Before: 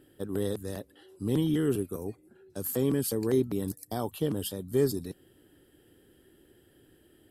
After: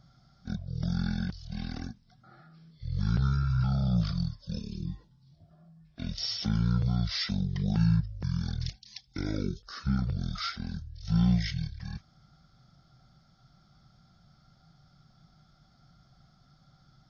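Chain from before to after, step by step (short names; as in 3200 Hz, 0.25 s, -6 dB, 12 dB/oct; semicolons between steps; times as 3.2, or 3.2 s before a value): bell 3300 Hz +3.5 dB 0.34 oct; speed mistake 78 rpm record played at 33 rpm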